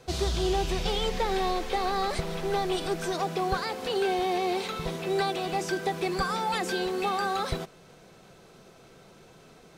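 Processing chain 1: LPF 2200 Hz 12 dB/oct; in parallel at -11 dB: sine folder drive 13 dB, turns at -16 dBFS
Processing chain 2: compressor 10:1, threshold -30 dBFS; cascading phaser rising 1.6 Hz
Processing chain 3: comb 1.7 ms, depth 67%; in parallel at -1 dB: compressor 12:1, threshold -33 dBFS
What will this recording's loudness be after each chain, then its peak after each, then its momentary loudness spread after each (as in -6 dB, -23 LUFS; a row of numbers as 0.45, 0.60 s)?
-25.5, -36.0, -26.0 LUFS; -14.5, -21.5, -11.5 dBFS; 21, 19, 3 LU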